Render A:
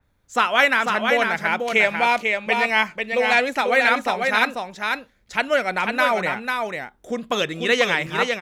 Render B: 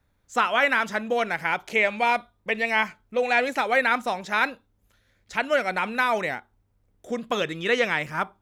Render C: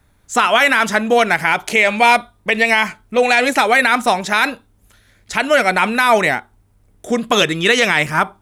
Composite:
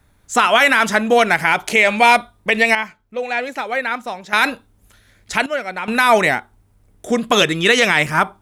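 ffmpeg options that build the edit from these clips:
-filter_complex "[1:a]asplit=2[s0][s1];[2:a]asplit=3[s2][s3][s4];[s2]atrim=end=2.752[s5];[s0]atrim=start=2.748:end=4.332[s6];[s3]atrim=start=4.328:end=5.462[s7];[s1]atrim=start=5.458:end=5.882[s8];[s4]atrim=start=5.878[s9];[s5][s6]acrossfade=d=0.004:c1=hsin:c2=hsin[s10];[s10][s7]acrossfade=d=0.004:c1=hsin:c2=hsin[s11];[s11][s8]acrossfade=d=0.004:c1=hsin:c2=hsin[s12];[s12][s9]acrossfade=d=0.004:c1=hsin:c2=hsin"

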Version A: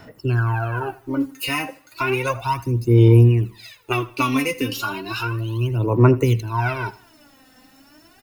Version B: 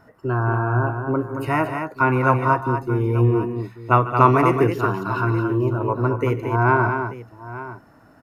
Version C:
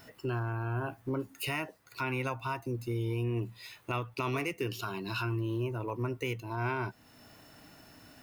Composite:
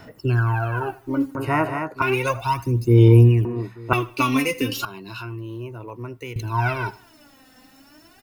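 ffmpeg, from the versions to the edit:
-filter_complex "[1:a]asplit=2[s0][s1];[0:a]asplit=4[s2][s3][s4][s5];[s2]atrim=end=1.352[s6];[s0]atrim=start=1.348:end=2.022[s7];[s3]atrim=start=2.018:end=3.452[s8];[s1]atrim=start=3.448:end=3.932[s9];[s4]atrim=start=3.928:end=4.852[s10];[2:a]atrim=start=4.848:end=6.362[s11];[s5]atrim=start=6.358[s12];[s6][s7]acrossfade=d=0.004:c1=hsin:c2=hsin[s13];[s13][s8]acrossfade=d=0.004:c1=hsin:c2=hsin[s14];[s14][s9]acrossfade=d=0.004:c1=hsin:c2=hsin[s15];[s15][s10]acrossfade=d=0.004:c1=hsin:c2=hsin[s16];[s16][s11]acrossfade=d=0.004:c1=hsin:c2=hsin[s17];[s17][s12]acrossfade=d=0.004:c1=hsin:c2=hsin"

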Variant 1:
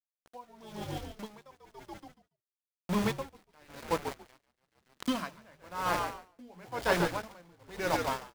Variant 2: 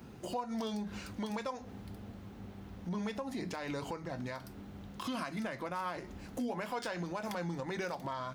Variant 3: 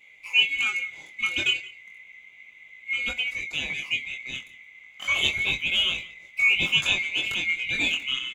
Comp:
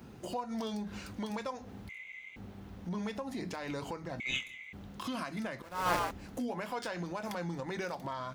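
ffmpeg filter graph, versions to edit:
-filter_complex "[2:a]asplit=2[s0][s1];[1:a]asplit=4[s2][s3][s4][s5];[s2]atrim=end=1.892[s6];[s0]atrim=start=1.888:end=2.362[s7];[s3]atrim=start=2.358:end=4.202[s8];[s1]atrim=start=4.198:end=4.732[s9];[s4]atrim=start=4.728:end=5.622[s10];[0:a]atrim=start=5.618:end=6.112[s11];[s5]atrim=start=6.108[s12];[s6][s7]acrossfade=d=0.004:c1=hsin:c2=hsin[s13];[s13][s8]acrossfade=d=0.004:c1=hsin:c2=hsin[s14];[s14][s9]acrossfade=d=0.004:c1=hsin:c2=hsin[s15];[s15][s10]acrossfade=d=0.004:c1=hsin:c2=hsin[s16];[s16][s11]acrossfade=d=0.004:c1=hsin:c2=hsin[s17];[s17][s12]acrossfade=d=0.004:c1=hsin:c2=hsin"

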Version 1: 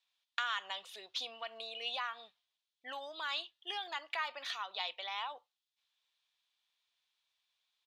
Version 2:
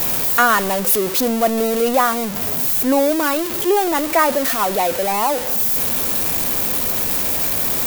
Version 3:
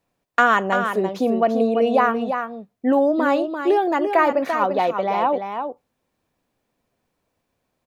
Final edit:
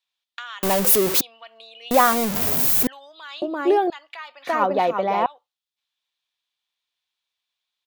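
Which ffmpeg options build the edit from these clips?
-filter_complex "[1:a]asplit=2[s0][s1];[2:a]asplit=2[s2][s3];[0:a]asplit=5[s4][s5][s6][s7][s8];[s4]atrim=end=0.632[s9];[s0]atrim=start=0.628:end=1.212[s10];[s5]atrim=start=1.208:end=1.912[s11];[s1]atrim=start=1.908:end=2.872[s12];[s6]atrim=start=2.868:end=3.422[s13];[s2]atrim=start=3.418:end=3.902[s14];[s7]atrim=start=3.898:end=4.472[s15];[s3]atrim=start=4.468:end=5.262[s16];[s8]atrim=start=5.258[s17];[s9][s10]acrossfade=d=0.004:c1=hsin:c2=hsin[s18];[s18][s11]acrossfade=d=0.004:c1=hsin:c2=hsin[s19];[s19][s12]acrossfade=d=0.004:c1=hsin:c2=hsin[s20];[s20][s13]acrossfade=d=0.004:c1=hsin:c2=hsin[s21];[s21][s14]acrossfade=d=0.004:c1=hsin:c2=hsin[s22];[s22][s15]acrossfade=d=0.004:c1=hsin:c2=hsin[s23];[s23][s16]acrossfade=d=0.004:c1=hsin:c2=hsin[s24];[s24][s17]acrossfade=d=0.004:c1=hsin:c2=hsin"

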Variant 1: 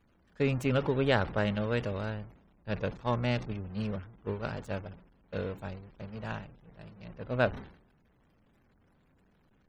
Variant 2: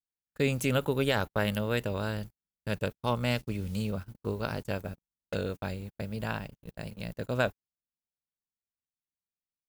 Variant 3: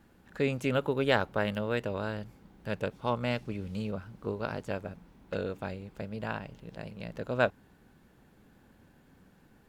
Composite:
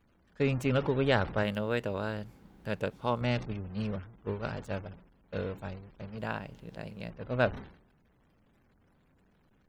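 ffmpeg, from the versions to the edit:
-filter_complex "[2:a]asplit=2[s0][s1];[0:a]asplit=3[s2][s3][s4];[s2]atrim=end=1.432[s5];[s0]atrim=start=1.428:end=3.212[s6];[s3]atrim=start=3.208:end=6.182[s7];[s1]atrim=start=6.178:end=7.102[s8];[s4]atrim=start=7.098[s9];[s5][s6]acrossfade=d=0.004:c1=hsin:c2=hsin[s10];[s10][s7]acrossfade=d=0.004:c1=hsin:c2=hsin[s11];[s11][s8]acrossfade=d=0.004:c1=hsin:c2=hsin[s12];[s12][s9]acrossfade=d=0.004:c1=hsin:c2=hsin"

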